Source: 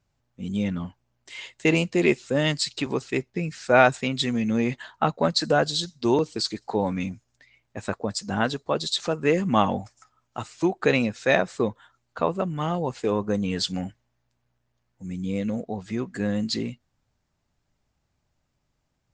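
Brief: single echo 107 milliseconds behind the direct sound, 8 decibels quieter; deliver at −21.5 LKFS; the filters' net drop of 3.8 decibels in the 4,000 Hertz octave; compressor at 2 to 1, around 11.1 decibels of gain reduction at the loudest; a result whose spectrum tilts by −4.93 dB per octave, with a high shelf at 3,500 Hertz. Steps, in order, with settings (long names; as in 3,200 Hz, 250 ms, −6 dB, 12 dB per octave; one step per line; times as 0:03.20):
high-shelf EQ 3,500 Hz +4.5 dB
parametric band 4,000 Hz −7.5 dB
downward compressor 2 to 1, threshold −33 dBFS
single-tap delay 107 ms −8 dB
level +11 dB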